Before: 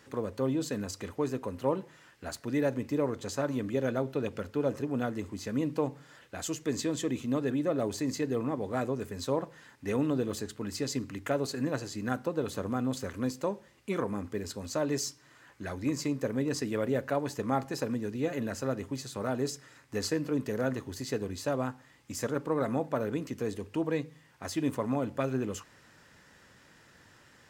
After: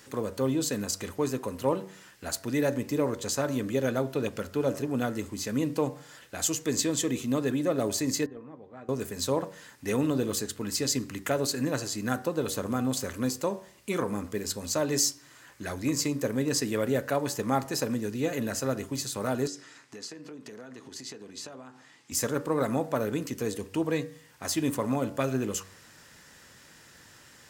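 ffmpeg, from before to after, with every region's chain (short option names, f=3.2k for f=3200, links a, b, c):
-filter_complex "[0:a]asettb=1/sr,asplit=3[a][b][c];[a]atrim=end=8.264[d];[b]atrim=start=8.26:end=8.89,asetpts=PTS-STARTPTS,afade=t=in:d=0.004:c=qsin,afade=t=out:st=0.626:d=0.004:c=qsin,agate=range=-17dB:threshold=-27dB:ratio=16:release=100:detection=peak,lowpass=2.5k,asplit=2[e][f];[f]adelay=13,volume=-11.5dB[g];[e][g]amix=inputs=2:normalize=0,atrim=end_sample=27783[h];[c]atrim=start=8.886[i];[d][h]acrossfade=d=0.004:c1=hsin:c2=qsin[j];[j][i]acrossfade=d=0.004:c1=qsin:c2=hsin,asettb=1/sr,asplit=3[k][l][m];[k]atrim=end=19.474[n];[l]atrim=start=19.47:end=22.12,asetpts=PTS-STARTPTS,afade=t=in:d=0.004:c=qsin,afade=t=out:st=2.646:d=0.004:c=qsin,bandreject=f=540:w=11,acompressor=threshold=-41dB:ratio=16:attack=3.2:release=140:knee=1:detection=peak,highpass=190,lowpass=6.6k[o];[m]atrim=start=22.116[p];[n][o]acrossfade=d=0.004:c1=hsin:c2=qsin[q];[q][p]acrossfade=d=0.004:c1=qsin:c2=hsin,highshelf=f=4.5k:g=11,bandreject=f=95.32:t=h:w=4,bandreject=f=190.64:t=h:w=4,bandreject=f=285.96:t=h:w=4,bandreject=f=381.28:t=h:w=4,bandreject=f=476.6:t=h:w=4,bandreject=f=571.92:t=h:w=4,bandreject=f=667.24:t=h:w=4,bandreject=f=762.56:t=h:w=4,bandreject=f=857.88:t=h:w=4,bandreject=f=953.2:t=h:w=4,bandreject=f=1.04852k:t=h:w=4,bandreject=f=1.14384k:t=h:w=4,bandreject=f=1.23916k:t=h:w=4,bandreject=f=1.33448k:t=h:w=4,bandreject=f=1.4298k:t=h:w=4,bandreject=f=1.52512k:t=h:w=4,bandreject=f=1.62044k:t=h:w=4,bandreject=f=1.71576k:t=h:w=4,bandreject=f=1.81108k:t=h:w=4,bandreject=f=1.9064k:t=h:w=4,volume=2.5dB"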